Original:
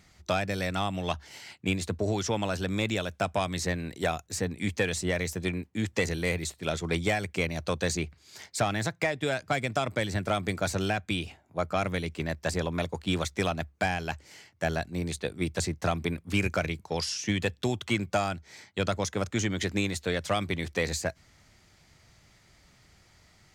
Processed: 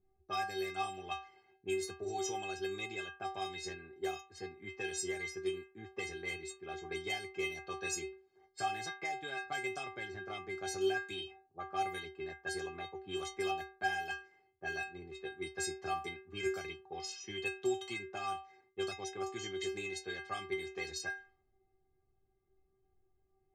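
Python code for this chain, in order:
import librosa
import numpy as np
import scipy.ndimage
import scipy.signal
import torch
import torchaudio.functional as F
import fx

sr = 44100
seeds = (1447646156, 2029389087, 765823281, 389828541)

y = fx.high_shelf(x, sr, hz=5300.0, db=3.5)
y = fx.stiff_resonator(y, sr, f0_hz=380.0, decay_s=0.42, stiffness=0.008)
y = fx.env_lowpass(y, sr, base_hz=440.0, full_db=-43.0)
y = y * 10.0 ** (9.0 / 20.0)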